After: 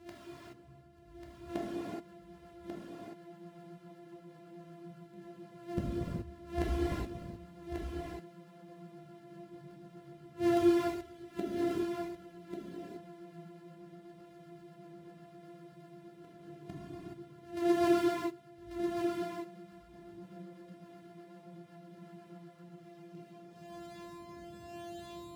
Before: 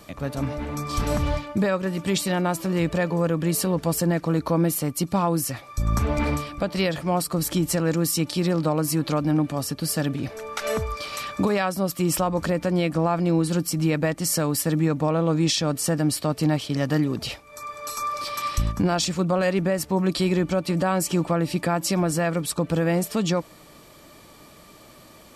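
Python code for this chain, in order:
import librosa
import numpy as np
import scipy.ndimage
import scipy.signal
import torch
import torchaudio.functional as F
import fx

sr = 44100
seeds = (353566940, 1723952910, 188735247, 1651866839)

p1 = np.r_[np.sort(x[:len(x) // 128 * 128].reshape(-1, 128), axis=1).ravel(), x[len(x) // 128 * 128:]]
p2 = scipy.signal.sosfilt(scipy.signal.butter(2, 59.0, 'highpass', fs=sr, output='sos'), p1)
p3 = fx.high_shelf(p2, sr, hz=4400.0, db=2.0)
p4 = fx.rider(p3, sr, range_db=3, speed_s=2.0)
p5 = fx.rotary_switch(p4, sr, hz=8.0, then_hz=0.9, switch_at_s=22.66)
p6 = fx.gate_flip(p5, sr, shuts_db=-20.0, range_db=-30)
p7 = p6 + fx.echo_single(p6, sr, ms=1141, db=-5.0, dry=0)
p8 = fx.rev_gated(p7, sr, seeds[0], gate_ms=450, shape='flat', drr_db=-7.5)
p9 = fx.spectral_expand(p8, sr, expansion=1.5)
y = p9 * 10.0 ** (-2.5 / 20.0)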